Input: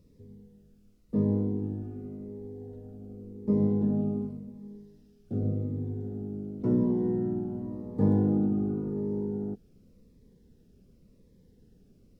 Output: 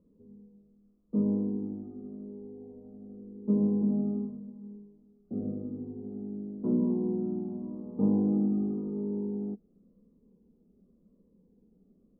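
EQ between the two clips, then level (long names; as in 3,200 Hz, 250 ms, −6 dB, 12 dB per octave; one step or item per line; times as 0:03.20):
elliptic low-pass filter 1,200 Hz, stop band 50 dB
low shelf with overshoot 160 Hz −6.5 dB, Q 3
−4.5 dB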